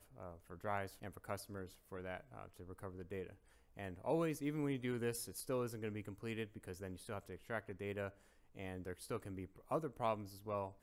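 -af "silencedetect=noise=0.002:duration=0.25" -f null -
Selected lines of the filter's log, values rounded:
silence_start: 3.34
silence_end: 3.77 | silence_duration: 0.43
silence_start: 8.21
silence_end: 8.55 | silence_duration: 0.34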